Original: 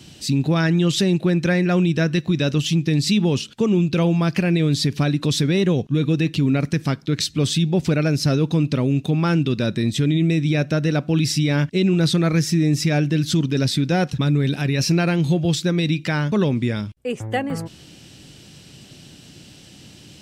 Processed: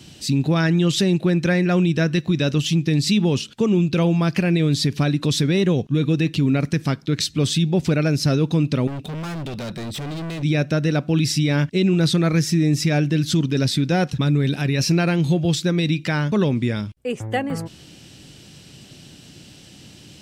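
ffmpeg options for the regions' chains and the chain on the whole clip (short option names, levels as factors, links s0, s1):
-filter_complex "[0:a]asettb=1/sr,asplit=3[s0][s1][s2];[s0]atrim=end=8.874[s3];[s1]atrim=start=8.87:end=10.43,asetpts=PTS-STARTPTS,afade=t=in:d=0.004:c=qsin,afade=t=out:st=1.556:d=0.004:c=qsin,bandreject=f=6700:w=5.9,volume=23.7,asoftclip=hard,volume=0.0422[s4];[s2]atrim=start=10.426[s5];[s3][s4]acrossfade=d=0.004:c1=hsin:c2=qsin[s6];[s6][s5]acrossfade=d=0.004:c1=qsin:c2=hsin"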